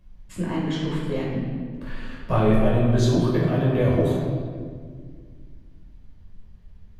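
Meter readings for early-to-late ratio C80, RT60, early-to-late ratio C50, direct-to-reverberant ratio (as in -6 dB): 2.5 dB, 1.9 s, 0.0 dB, -6.0 dB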